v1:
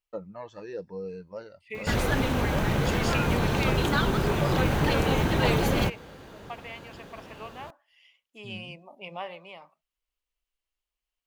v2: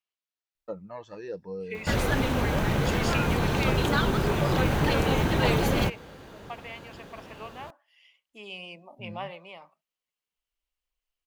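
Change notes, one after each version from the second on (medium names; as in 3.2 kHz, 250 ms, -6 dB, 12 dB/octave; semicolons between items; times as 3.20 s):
first voice: entry +0.55 s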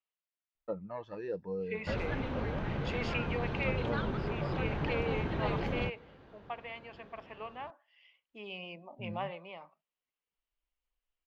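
background -9.5 dB; master: add distance through air 250 m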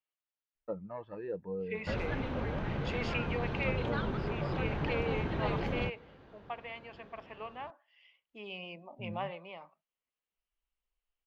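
first voice: add distance through air 350 m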